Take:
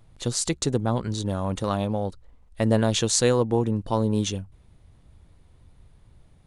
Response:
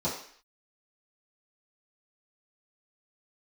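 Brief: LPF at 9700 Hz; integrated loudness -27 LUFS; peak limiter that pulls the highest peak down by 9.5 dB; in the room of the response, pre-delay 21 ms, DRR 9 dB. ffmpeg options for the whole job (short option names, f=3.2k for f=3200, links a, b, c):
-filter_complex "[0:a]lowpass=9.7k,alimiter=limit=-13.5dB:level=0:latency=1,asplit=2[a][b];[1:a]atrim=start_sample=2205,adelay=21[c];[b][c]afir=irnorm=-1:irlink=0,volume=-17dB[d];[a][d]amix=inputs=2:normalize=0,volume=-1.5dB"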